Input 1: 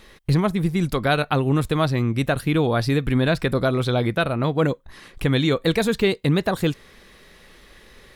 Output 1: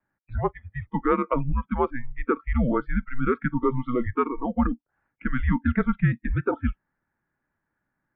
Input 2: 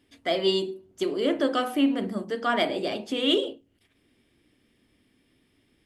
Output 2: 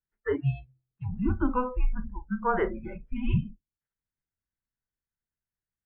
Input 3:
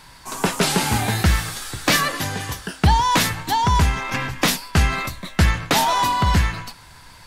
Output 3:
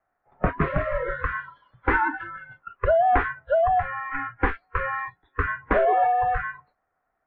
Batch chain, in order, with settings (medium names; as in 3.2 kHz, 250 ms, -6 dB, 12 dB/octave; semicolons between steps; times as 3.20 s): spectral noise reduction 27 dB; mistuned SSB -250 Hz 220–2100 Hz